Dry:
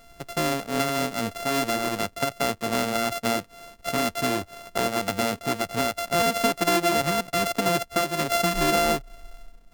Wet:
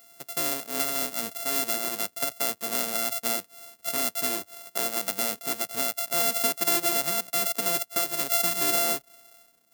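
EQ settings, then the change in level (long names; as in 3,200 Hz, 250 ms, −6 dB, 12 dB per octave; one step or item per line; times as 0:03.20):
high-pass filter 210 Hz 12 dB per octave
high-shelf EQ 3,500 Hz +9.5 dB
high-shelf EQ 10,000 Hz +11.5 dB
−8.5 dB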